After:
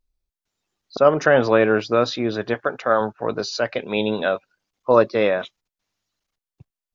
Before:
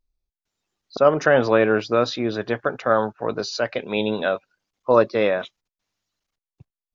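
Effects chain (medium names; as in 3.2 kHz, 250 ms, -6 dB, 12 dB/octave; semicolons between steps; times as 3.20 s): 2.54–3.01 s: bass shelf 180 Hz -9.5 dB; trim +1 dB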